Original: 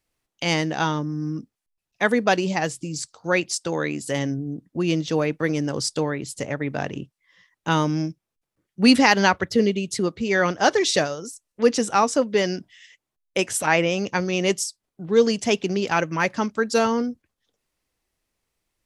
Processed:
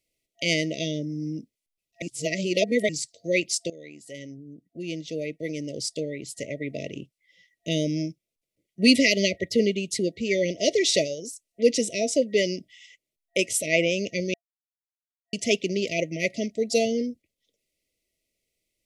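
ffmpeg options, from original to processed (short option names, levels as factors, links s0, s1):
-filter_complex "[0:a]asplit=6[s0][s1][s2][s3][s4][s5];[s0]atrim=end=2.022[s6];[s1]atrim=start=2.018:end=2.892,asetpts=PTS-STARTPTS,areverse[s7];[s2]atrim=start=2.888:end=3.7,asetpts=PTS-STARTPTS,afade=t=out:st=0.808:d=0.004:c=hsin:silence=0.133352[s8];[s3]atrim=start=3.7:end=14.34,asetpts=PTS-STARTPTS,afade=t=in:d=4.01:silence=0.133352,afade=t=out:st=10.636:d=0.004:c=hsin[s9];[s4]atrim=start=14.34:end=15.33,asetpts=PTS-STARTPTS,volume=0[s10];[s5]atrim=start=15.33,asetpts=PTS-STARTPTS,afade=t=in:d=0.004:c=hsin[s11];[s6][s7]acrossfade=d=0.004:c1=hsin:c2=hsin[s12];[s8][s9][s10][s11]concat=n=4:v=0:a=1[s13];[s12][s13]acrossfade=d=0.004:c1=hsin:c2=hsin,lowshelf=f=220:g=-7.5,afftfilt=real='re*(1-between(b*sr/4096,680,1900))':imag='im*(1-between(b*sr/4096,680,1900))':win_size=4096:overlap=0.75"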